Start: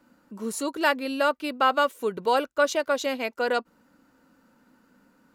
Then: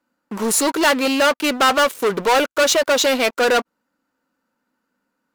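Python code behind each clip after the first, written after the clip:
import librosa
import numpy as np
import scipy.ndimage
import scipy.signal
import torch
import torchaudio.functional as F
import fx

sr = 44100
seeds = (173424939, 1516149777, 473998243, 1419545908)

y = fx.leveller(x, sr, passes=5)
y = fx.low_shelf(y, sr, hz=290.0, db=-9.5)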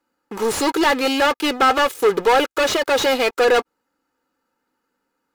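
y = x + 0.54 * np.pad(x, (int(2.4 * sr / 1000.0), 0))[:len(x)]
y = fx.slew_limit(y, sr, full_power_hz=390.0)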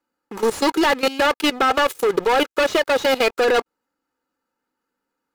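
y = fx.leveller(x, sr, passes=1)
y = fx.level_steps(y, sr, step_db=16)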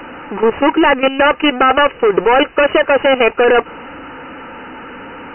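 y = x + 0.5 * 10.0 ** (-30.0 / 20.0) * np.sign(x)
y = fx.brickwall_lowpass(y, sr, high_hz=3000.0)
y = F.gain(torch.from_numpy(y), 6.0).numpy()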